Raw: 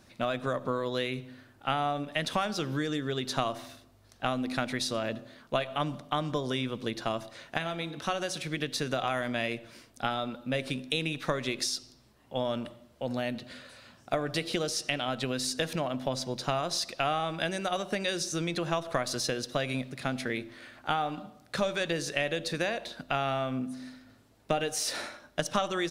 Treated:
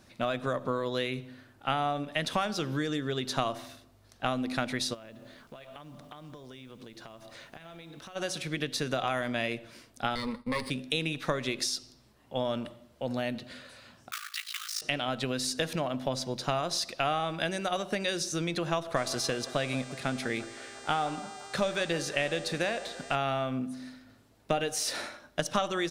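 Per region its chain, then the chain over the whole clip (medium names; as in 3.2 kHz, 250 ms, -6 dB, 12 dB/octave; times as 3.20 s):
4.93–8.15 s: compression 12:1, threshold -43 dBFS + added noise pink -68 dBFS
10.15–10.70 s: comb filter that takes the minimum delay 0.62 ms + expander -44 dBFS + rippled EQ curve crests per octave 0.92, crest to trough 13 dB
14.11–14.82 s: block-companded coder 3-bit + brick-wall FIR high-pass 1.1 kHz + ring modulator 27 Hz
18.95–23.14 s: mains buzz 400 Hz, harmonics 23, -49 dBFS -2 dB/octave + feedback echo behind a band-pass 173 ms, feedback 73%, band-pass 910 Hz, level -15 dB
whole clip: none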